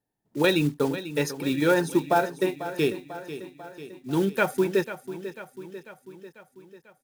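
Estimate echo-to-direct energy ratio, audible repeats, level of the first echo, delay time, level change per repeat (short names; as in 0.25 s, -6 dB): -11.0 dB, 5, -13.0 dB, 0.494 s, -4.5 dB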